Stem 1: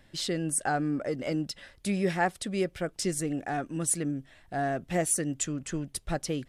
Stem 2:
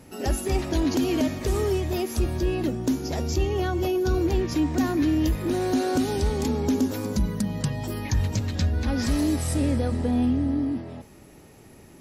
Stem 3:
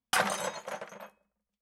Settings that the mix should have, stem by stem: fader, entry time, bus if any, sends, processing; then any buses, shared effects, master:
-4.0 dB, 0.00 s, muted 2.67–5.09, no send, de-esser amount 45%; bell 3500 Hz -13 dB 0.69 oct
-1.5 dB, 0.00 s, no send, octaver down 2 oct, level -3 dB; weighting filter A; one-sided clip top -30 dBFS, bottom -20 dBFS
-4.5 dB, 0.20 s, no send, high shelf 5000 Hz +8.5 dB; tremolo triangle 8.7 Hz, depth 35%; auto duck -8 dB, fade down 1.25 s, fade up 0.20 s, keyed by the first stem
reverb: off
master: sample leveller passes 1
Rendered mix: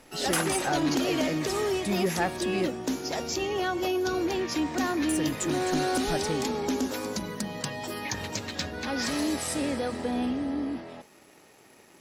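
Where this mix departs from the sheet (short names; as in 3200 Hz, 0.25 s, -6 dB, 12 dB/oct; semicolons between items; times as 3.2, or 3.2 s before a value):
stem 1: missing bell 3500 Hz -13 dB 0.69 oct; stem 2: missing one-sided clip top -30 dBFS, bottom -20 dBFS; stem 3: missing tremolo triangle 8.7 Hz, depth 35%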